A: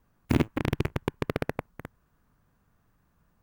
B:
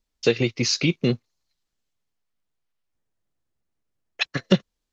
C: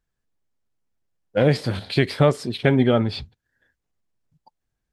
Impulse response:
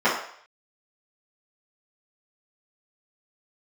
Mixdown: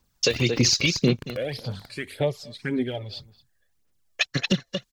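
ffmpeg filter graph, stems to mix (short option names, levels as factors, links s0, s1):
-filter_complex "[0:a]volume=0.376,asplit=2[s0][s1];[s1]volume=0.126[s2];[1:a]volume=1.12,asplit=2[s3][s4];[s4]volume=0.237[s5];[2:a]asplit=2[s6][s7];[s7]afreqshift=1.4[s8];[s6][s8]amix=inputs=2:normalize=1,volume=0.266,asplit=3[s9][s10][s11];[s10]volume=0.0794[s12];[s11]apad=whole_len=150983[s13];[s0][s13]sidechaincompress=threshold=0.00447:ratio=8:attack=16:release=109[s14];[s2][s5][s12]amix=inputs=3:normalize=0,aecho=0:1:226:1[s15];[s14][s3][s9][s15]amix=inputs=4:normalize=0,highshelf=f=3200:g=10.5,aphaser=in_gain=1:out_gain=1:delay=1.8:decay=0.52:speed=1.8:type=sinusoidal,alimiter=limit=0.335:level=0:latency=1:release=332"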